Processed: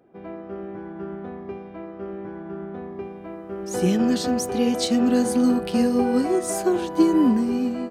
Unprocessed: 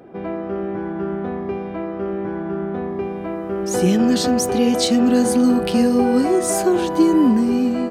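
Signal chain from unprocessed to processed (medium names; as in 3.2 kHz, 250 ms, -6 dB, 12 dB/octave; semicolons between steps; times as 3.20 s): upward expansion 1.5:1, over -36 dBFS; trim -2 dB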